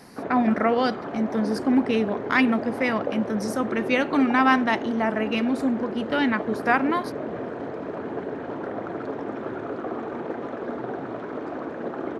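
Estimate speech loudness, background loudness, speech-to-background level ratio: -23.5 LUFS, -32.5 LUFS, 9.0 dB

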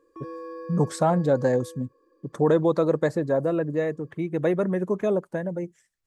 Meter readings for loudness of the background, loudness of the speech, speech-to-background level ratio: -40.5 LUFS, -25.0 LUFS, 15.5 dB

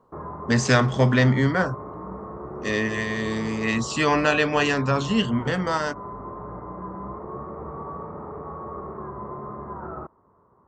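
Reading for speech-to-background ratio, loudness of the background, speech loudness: 13.5 dB, -36.0 LUFS, -22.5 LUFS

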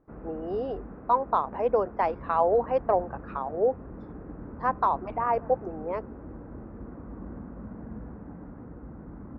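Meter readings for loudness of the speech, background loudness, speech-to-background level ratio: -28.0 LUFS, -43.0 LUFS, 15.0 dB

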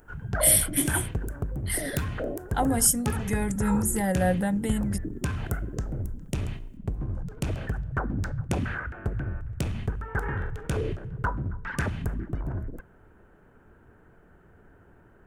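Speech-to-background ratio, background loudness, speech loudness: 7.5 dB, -32.5 LUFS, -25.0 LUFS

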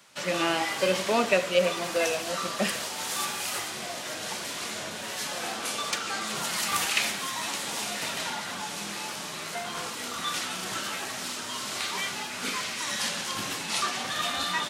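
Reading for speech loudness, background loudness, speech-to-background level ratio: -27.5 LUFS, -30.5 LUFS, 3.0 dB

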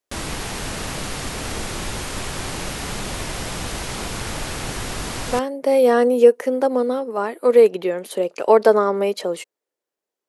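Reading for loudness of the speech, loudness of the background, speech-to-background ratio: -18.0 LUFS, -28.0 LUFS, 10.0 dB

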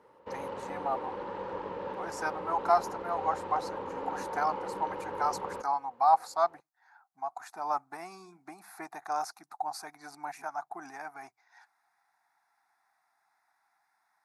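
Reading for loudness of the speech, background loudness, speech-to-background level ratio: -33.0 LUFS, -39.0 LUFS, 6.0 dB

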